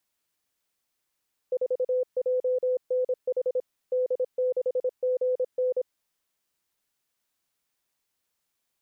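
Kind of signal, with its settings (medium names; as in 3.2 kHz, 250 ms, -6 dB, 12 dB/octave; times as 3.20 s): Morse "4JNH D6GN" 26 wpm 506 Hz -22 dBFS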